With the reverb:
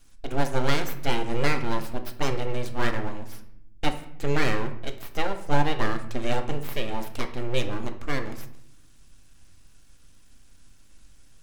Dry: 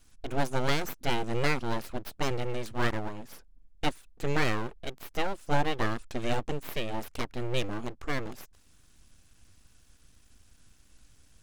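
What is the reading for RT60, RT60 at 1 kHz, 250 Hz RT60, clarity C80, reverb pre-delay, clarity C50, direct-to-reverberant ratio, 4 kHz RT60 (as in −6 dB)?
0.70 s, 0.60 s, 1.1 s, 14.0 dB, 4 ms, 11.0 dB, 6.0 dB, 0.50 s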